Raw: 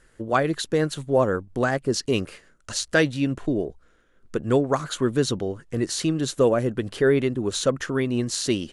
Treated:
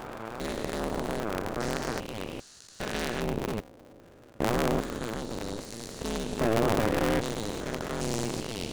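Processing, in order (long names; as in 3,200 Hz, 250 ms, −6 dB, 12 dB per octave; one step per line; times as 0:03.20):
spectrum averaged block by block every 400 ms
harmonic generator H 7 −20 dB, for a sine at −12.5 dBFS
ring modulator with a square carrier 110 Hz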